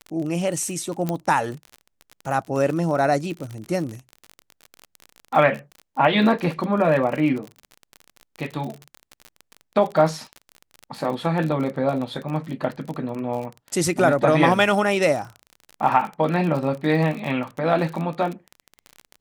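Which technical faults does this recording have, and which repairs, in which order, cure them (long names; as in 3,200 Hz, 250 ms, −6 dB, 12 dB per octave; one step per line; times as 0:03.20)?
surface crackle 42 per second −28 dBFS
0:01.09: click −11 dBFS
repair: click removal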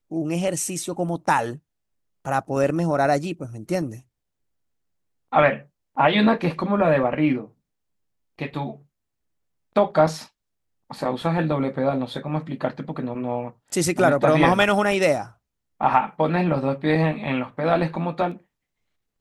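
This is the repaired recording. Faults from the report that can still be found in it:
0:01.09: click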